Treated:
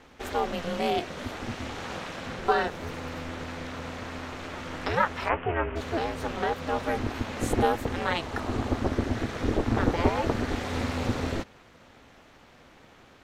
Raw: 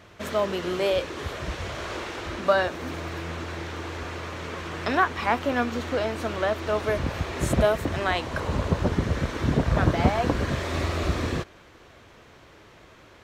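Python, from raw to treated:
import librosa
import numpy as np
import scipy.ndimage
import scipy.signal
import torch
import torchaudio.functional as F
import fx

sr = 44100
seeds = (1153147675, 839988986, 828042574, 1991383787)

y = fx.steep_lowpass(x, sr, hz=2900.0, slope=72, at=(5.28, 5.75), fade=0.02)
y = y * np.sin(2.0 * np.pi * 170.0 * np.arange(len(y)) / sr)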